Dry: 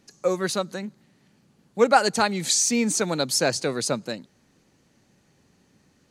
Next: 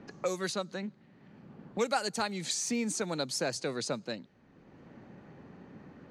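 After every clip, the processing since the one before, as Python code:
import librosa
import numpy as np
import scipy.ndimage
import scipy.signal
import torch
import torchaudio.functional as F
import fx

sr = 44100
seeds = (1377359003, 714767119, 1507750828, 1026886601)

y = fx.env_lowpass(x, sr, base_hz=1500.0, full_db=-19.0)
y = fx.band_squash(y, sr, depth_pct=70)
y = y * 10.0 ** (-9.0 / 20.0)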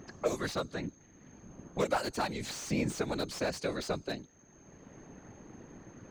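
y = x + 10.0 ** (-63.0 / 20.0) * np.sin(2.0 * np.pi * 6400.0 * np.arange(len(x)) / sr)
y = fx.whisperise(y, sr, seeds[0])
y = fx.slew_limit(y, sr, full_power_hz=51.0)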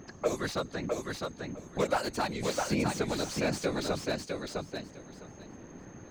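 y = fx.echo_feedback(x, sr, ms=657, feedback_pct=17, wet_db=-3.5)
y = y * 10.0 ** (1.5 / 20.0)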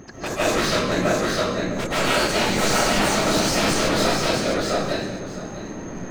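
y = 10.0 ** (-29.5 / 20.0) * (np.abs((x / 10.0 ** (-29.5 / 20.0) + 3.0) % 4.0 - 2.0) - 1.0)
y = fx.rev_freeverb(y, sr, rt60_s=0.93, hf_ratio=0.85, predelay_ms=110, drr_db=-9.5)
y = y * 10.0 ** (6.0 / 20.0)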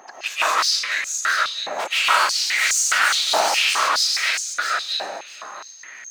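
y = fx.filter_held_highpass(x, sr, hz=4.8, low_hz=800.0, high_hz=6700.0)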